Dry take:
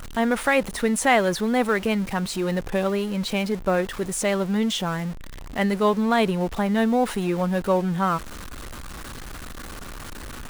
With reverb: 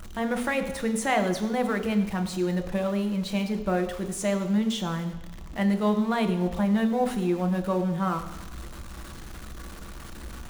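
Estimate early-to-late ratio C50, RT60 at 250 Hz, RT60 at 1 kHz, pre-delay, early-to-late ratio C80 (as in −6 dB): 10.0 dB, 1.0 s, 1.1 s, 3 ms, 12.0 dB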